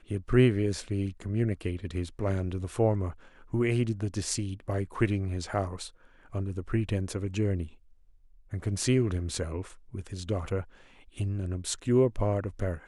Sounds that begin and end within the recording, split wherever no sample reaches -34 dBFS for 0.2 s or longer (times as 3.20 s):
3.53–5.87 s
6.34–7.66 s
8.53–9.62 s
9.95–10.61 s